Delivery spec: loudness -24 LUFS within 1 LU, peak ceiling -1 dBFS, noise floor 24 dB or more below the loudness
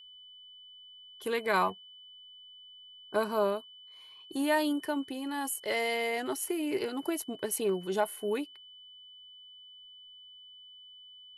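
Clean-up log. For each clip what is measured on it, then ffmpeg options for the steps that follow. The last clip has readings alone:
steady tone 3000 Hz; tone level -50 dBFS; loudness -32.0 LUFS; peak -15.5 dBFS; loudness target -24.0 LUFS
-> -af "bandreject=f=3k:w=30"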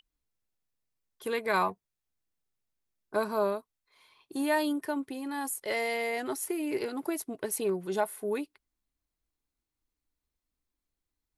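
steady tone none; loudness -32.0 LUFS; peak -15.5 dBFS; loudness target -24.0 LUFS
-> -af "volume=8dB"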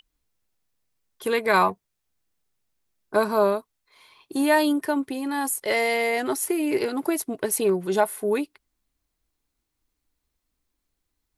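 loudness -24.0 LUFS; peak -7.5 dBFS; noise floor -80 dBFS

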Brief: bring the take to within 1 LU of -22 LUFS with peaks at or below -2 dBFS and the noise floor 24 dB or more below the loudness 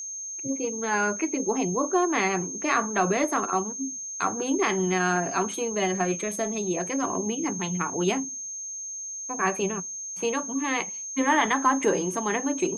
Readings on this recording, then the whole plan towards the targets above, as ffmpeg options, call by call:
steady tone 6400 Hz; tone level -33 dBFS; loudness -26.5 LUFS; peak -8.5 dBFS; loudness target -22.0 LUFS
-> -af "bandreject=f=6.4k:w=30"
-af "volume=4.5dB"

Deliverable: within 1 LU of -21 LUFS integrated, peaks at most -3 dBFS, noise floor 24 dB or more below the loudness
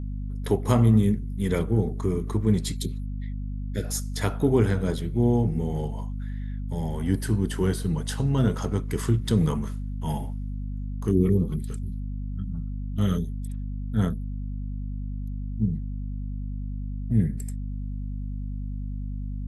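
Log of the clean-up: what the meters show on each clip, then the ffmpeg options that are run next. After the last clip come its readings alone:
hum 50 Hz; harmonics up to 250 Hz; hum level -29 dBFS; loudness -27.5 LUFS; peak -7.5 dBFS; loudness target -21.0 LUFS
-> -af "bandreject=f=50:t=h:w=6,bandreject=f=100:t=h:w=6,bandreject=f=150:t=h:w=6,bandreject=f=200:t=h:w=6,bandreject=f=250:t=h:w=6"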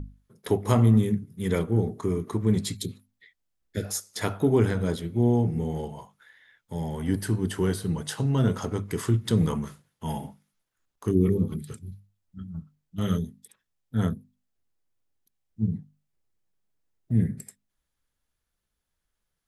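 hum none; loudness -27.0 LUFS; peak -7.5 dBFS; loudness target -21.0 LUFS
-> -af "volume=6dB,alimiter=limit=-3dB:level=0:latency=1"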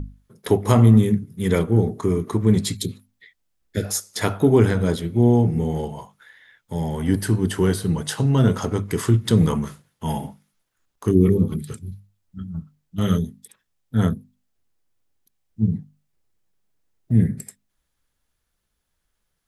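loudness -21.0 LUFS; peak -3.0 dBFS; noise floor -75 dBFS

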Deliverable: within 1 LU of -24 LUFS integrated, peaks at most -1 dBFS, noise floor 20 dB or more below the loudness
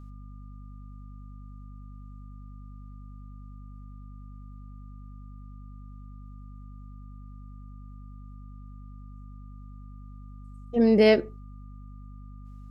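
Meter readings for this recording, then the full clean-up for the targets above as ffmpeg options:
hum 50 Hz; harmonics up to 250 Hz; hum level -41 dBFS; steady tone 1200 Hz; tone level -59 dBFS; loudness -21.5 LUFS; peak -7.0 dBFS; loudness target -24.0 LUFS
-> -af "bandreject=f=50:t=h:w=4,bandreject=f=100:t=h:w=4,bandreject=f=150:t=h:w=4,bandreject=f=200:t=h:w=4,bandreject=f=250:t=h:w=4"
-af "bandreject=f=1.2k:w=30"
-af "volume=-2.5dB"

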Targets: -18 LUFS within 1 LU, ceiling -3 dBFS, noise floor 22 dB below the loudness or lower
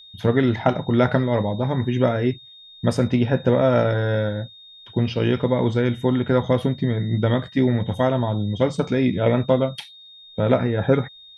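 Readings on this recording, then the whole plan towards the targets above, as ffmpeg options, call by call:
steady tone 3700 Hz; tone level -43 dBFS; loudness -21.5 LUFS; peak -3.0 dBFS; loudness target -18.0 LUFS
-> -af "bandreject=f=3.7k:w=30"
-af "volume=3.5dB,alimiter=limit=-3dB:level=0:latency=1"

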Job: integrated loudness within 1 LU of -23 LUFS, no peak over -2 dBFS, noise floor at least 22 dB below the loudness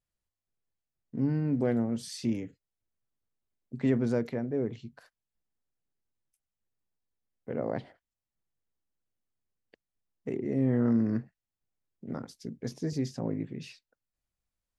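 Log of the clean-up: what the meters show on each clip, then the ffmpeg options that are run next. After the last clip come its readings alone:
loudness -31.5 LUFS; peak -15.0 dBFS; loudness target -23.0 LUFS
-> -af "volume=8.5dB"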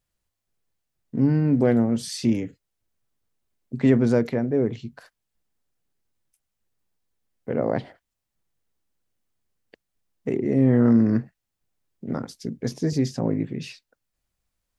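loudness -23.0 LUFS; peak -6.5 dBFS; noise floor -82 dBFS

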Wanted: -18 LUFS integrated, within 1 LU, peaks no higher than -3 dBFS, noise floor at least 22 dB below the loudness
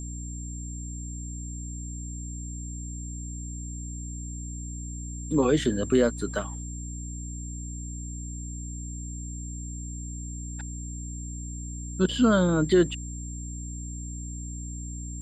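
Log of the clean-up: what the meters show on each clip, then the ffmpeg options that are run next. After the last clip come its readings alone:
hum 60 Hz; harmonics up to 300 Hz; hum level -34 dBFS; steady tone 7400 Hz; tone level -41 dBFS; loudness -30.5 LUFS; peak -10.5 dBFS; loudness target -18.0 LUFS
-> -af "bandreject=f=60:t=h:w=6,bandreject=f=120:t=h:w=6,bandreject=f=180:t=h:w=6,bandreject=f=240:t=h:w=6,bandreject=f=300:t=h:w=6"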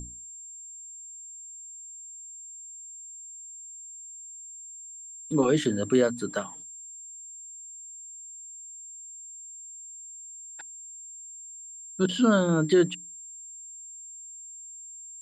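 hum none; steady tone 7400 Hz; tone level -41 dBFS
-> -af "bandreject=f=7.4k:w=30"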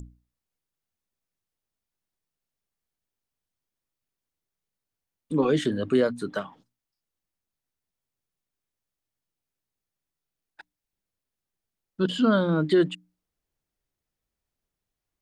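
steady tone none; loudness -24.5 LUFS; peak -10.0 dBFS; loudness target -18.0 LUFS
-> -af "volume=6.5dB"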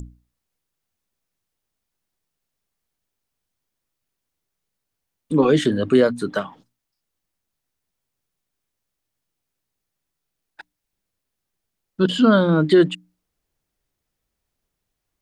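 loudness -18.0 LUFS; peak -3.5 dBFS; noise floor -81 dBFS

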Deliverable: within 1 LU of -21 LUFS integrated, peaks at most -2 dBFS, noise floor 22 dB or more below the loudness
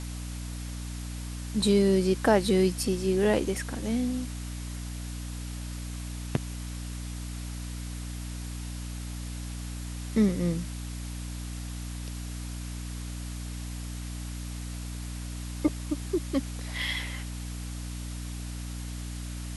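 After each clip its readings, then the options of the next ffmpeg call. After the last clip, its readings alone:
hum 60 Hz; harmonics up to 300 Hz; hum level -34 dBFS; noise floor -37 dBFS; noise floor target -54 dBFS; loudness -31.5 LUFS; peak -9.5 dBFS; loudness target -21.0 LUFS
-> -af "bandreject=f=60:t=h:w=6,bandreject=f=120:t=h:w=6,bandreject=f=180:t=h:w=6,bandreject=f=240:t=h:w=6,bandreject=f=300:t=h:w=6"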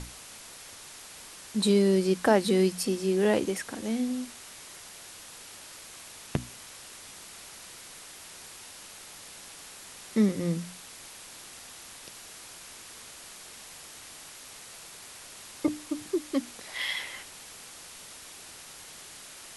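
hum none; noise floor -47 dBFS; noise floor target -50 dBFS
-> -af "afftdn=nr=6:nf=-47"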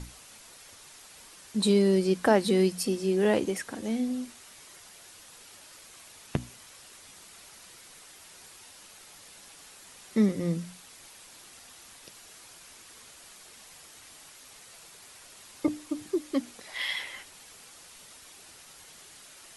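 noise floor -52 dBFS; loudness -28.0 LUFS; peak -10.0 dBFS; loudness target -21.0 LUFS
-> -af "volume=7dB"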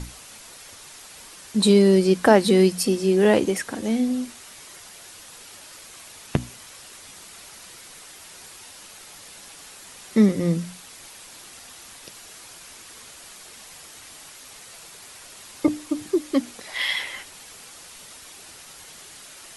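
loudness -21.0 LUFS; peak -3.0 dBFS; noise floor -45 dBFS

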